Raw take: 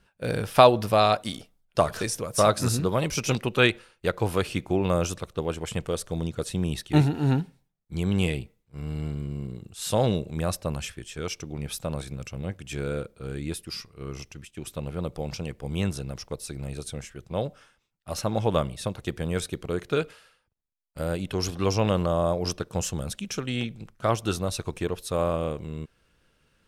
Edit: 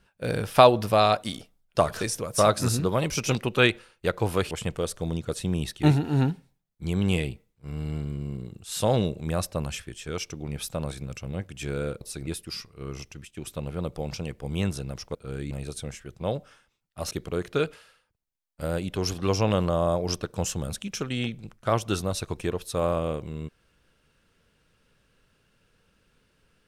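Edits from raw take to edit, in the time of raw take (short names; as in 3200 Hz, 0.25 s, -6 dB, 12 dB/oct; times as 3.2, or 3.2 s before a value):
4.51–5.61 cut
13.11–13.47 swap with 16.35–16.61
18.21–19.48 cut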